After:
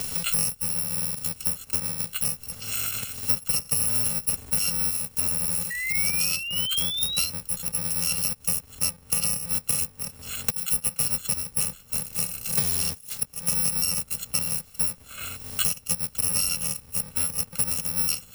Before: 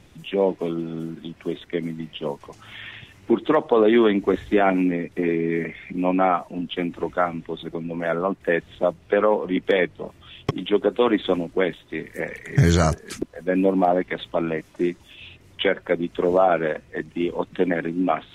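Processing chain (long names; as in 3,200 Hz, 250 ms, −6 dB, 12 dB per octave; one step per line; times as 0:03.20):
samples in bit-reversed order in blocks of 128 samples
sound drawn into the spectrogram rise, 0:05.70–0:07.30, 1,900–4,200 Hz −29 dBFS
multiband upward and downward compressor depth 100%
level −5.5 dB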